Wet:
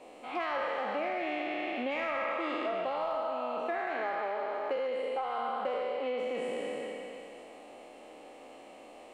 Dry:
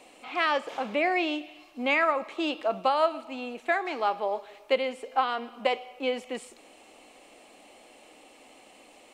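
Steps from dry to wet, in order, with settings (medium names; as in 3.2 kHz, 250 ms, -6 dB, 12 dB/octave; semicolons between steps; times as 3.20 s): spectral sustain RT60 2.69 s; peaking EQ 540 Hz +5 dB 1.6 oct; in parallel at -6 dB: hard clipper -14.5 dBFS, distortion -15 dB; on the sum: treble shelf 2.2 kHz -8.5 dB; compression 10:1, threshold -25 dBFS, peak gain reduction 14.5 dB; on a send: repeats whose band climbs or falls 148 ms, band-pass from 1.4 kHz, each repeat 0.7 oct, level -3.5 dB; on the sum: trim -6 dB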